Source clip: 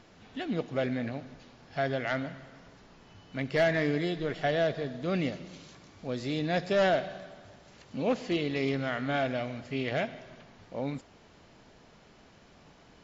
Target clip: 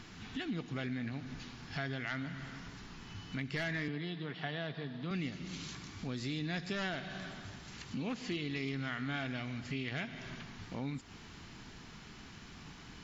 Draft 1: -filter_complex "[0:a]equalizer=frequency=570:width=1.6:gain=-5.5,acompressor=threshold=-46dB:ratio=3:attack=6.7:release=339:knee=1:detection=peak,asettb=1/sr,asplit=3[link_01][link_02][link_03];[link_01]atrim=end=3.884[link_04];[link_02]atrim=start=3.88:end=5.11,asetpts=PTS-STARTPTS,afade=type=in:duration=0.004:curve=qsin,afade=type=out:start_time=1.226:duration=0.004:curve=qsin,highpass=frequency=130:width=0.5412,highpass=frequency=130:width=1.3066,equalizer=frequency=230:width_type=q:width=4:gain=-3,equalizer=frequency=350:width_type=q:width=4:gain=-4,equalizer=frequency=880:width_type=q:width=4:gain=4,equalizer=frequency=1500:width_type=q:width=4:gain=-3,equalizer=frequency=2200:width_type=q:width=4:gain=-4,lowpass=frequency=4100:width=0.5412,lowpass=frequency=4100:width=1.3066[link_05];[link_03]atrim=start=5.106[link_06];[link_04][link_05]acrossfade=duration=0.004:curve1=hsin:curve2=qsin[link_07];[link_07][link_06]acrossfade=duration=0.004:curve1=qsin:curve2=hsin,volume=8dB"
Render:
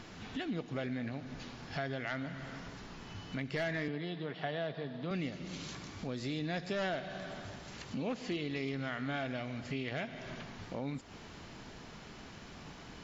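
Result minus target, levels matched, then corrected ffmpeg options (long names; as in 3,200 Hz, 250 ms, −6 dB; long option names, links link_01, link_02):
500 Hz band +5.0 dB
-filter_complex "[0:a]equalizer=frequency=570:width=1.6:gain=-16.5,acompressor=threshold=-46dB:ratio=3:attack=6.7:release=339:knee=1:detection=peak,asettb=1/sr,asplit=3[link_01][link_02][link_03];[link_01]atrim=end=3.884[link_04];[link_02]atrim=start=3.88:end=5.11,asetpts=PTS-STARTPTS,afade=type=in:duration=0.004:curve=qsin,afade=type=out:start_time=1.226:duration=0.004:curve=qsin,highpass=frequency=130:width=0.5412,highpass=frequency=130:width=1.3066,equalizer=frequency=230:width_type=q:width=4:gain=-3,equalizer=frequency=350:width_type=q:width=4:gain=-4,equalizer=frequency=880:width_type=q:width=4:gain=4,equalizer=frequency=1500:width_type=q:width=4:gain=-3,equalizer=frequency=2200:width_type=q:width=4:gain=-4,lowpass=frequency=4100:width=0.5412,lowpass=frequency=4100:width=1.3066[link_05];[link_03]atrim=start=5.106[link_06];[link_04][link_05]acrossfade=duration=0.004:curve1=hsin:curve2=qsin[link_07];[link_07][link_06]acrossfade=duration=0.004:curve1=qsin:curve2=hsin,volume=8dB"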